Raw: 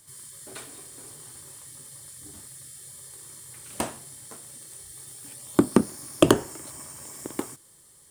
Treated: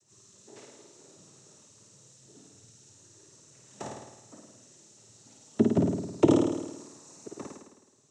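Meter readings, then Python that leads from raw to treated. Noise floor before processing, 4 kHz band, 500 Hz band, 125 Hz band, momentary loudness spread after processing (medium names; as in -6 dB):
-55 dBFS, -12.0 dB, -2.5 dB, 0.0 dB, 23 LU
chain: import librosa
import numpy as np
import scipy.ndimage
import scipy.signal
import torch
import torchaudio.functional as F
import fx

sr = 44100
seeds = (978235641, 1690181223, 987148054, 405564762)

p1 = fx.peak_eq(x, sr, hz=2400.0, db=-12.0, octaves=2.6)
p2 = fx.env_flanger(p1, sr, rest_ms=6.6, full_db=-22.5)
p3 = fx.noise_vocoder(p2, sr, seeds[0], bands=12)
p4 = p3 + fx.room_flutter(p3, sr, wall_m=9.1, rt60_s=1.0, dry=0)
y = p4 * 10.0 ** (-2.0 / 20.0)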